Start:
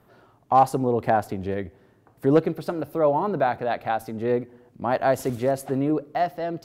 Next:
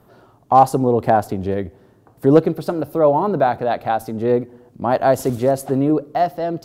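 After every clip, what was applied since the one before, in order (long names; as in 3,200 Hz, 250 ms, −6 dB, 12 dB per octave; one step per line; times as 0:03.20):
parametric band 2,100 Hz −6 dB 1.2 octaves
level +6.5 dB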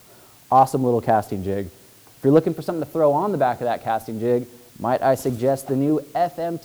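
bit-depth reduction 8 bits, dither triangular
level −3 dB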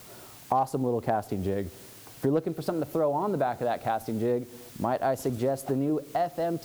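downward compressor 3 to 1, threshold −28 dBFS, peak gain reduction 14 dB
level +1.5 dB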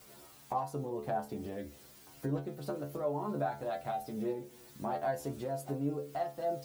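stiff-string resonator 70 Hz, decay 0.33 s, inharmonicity 0.002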